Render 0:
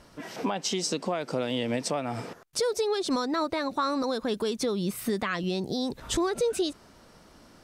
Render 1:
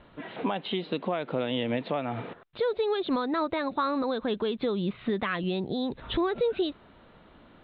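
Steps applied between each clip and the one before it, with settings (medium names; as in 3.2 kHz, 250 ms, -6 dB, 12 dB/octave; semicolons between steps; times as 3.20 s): steep low-pass 3.9 kHz 96 dB/octave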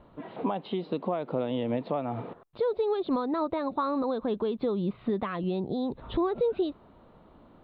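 high-order bell 2.4 kHz -10 dB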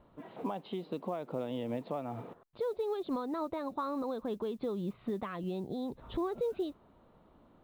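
modulation noise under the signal 34 dB; trim -7 dB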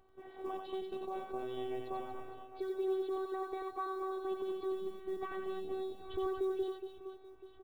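robot voice 379 Hz; reverse bouncing-ball echo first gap 90 ms, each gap 1.6×, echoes 5; trim -2 dB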